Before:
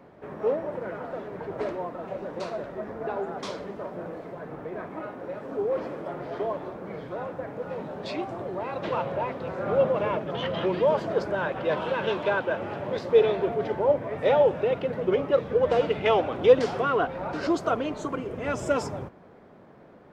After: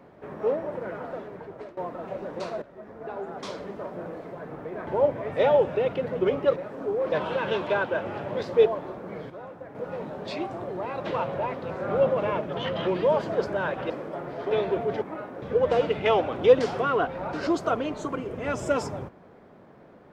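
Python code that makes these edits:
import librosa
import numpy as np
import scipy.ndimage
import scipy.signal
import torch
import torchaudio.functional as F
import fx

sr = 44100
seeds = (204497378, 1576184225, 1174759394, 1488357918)

y = fx.edit(x, sr, fx.fade_out_to(start_s=1.1, length_s=0.67, floor_db=-18.0),
    fx.fade_in_from(start_s=2.62, length_s=1.07, floor_db=-13.5),
    fx.swap(start_s=4.87, length_s=0.4, other_s=13.73, other_length_s=1.69),
    fx.swap(start_s=5.83, length_s=0.61, other_s=11.68, other_length_s=1.54),
    fx.clip_gain(start_s=7.08, length_s=0.45, db=-7.0), tone=tone)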